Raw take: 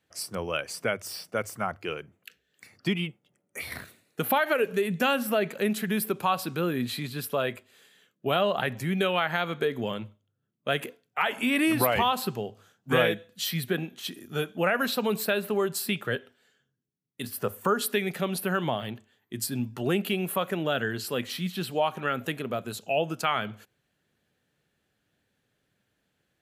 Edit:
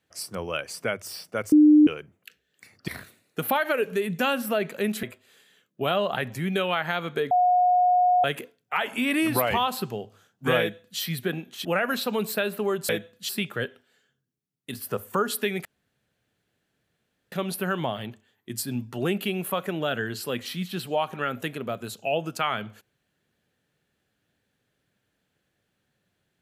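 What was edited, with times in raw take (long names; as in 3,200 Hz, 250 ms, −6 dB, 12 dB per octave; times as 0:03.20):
0:01.52–0:01.87: beep over 301 Hz −11 dBFS
0:02.88–0:03.69: remove
0:05.84–0:07.48: remove
0:09.76–0:10.69: beep over 723 Hz −16.5 dBFS
0:13.05–0:13.45: duplicate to 0:15.80
0:14.10–0:14.56: remove
0:18.16: splice in room tone 1.67 s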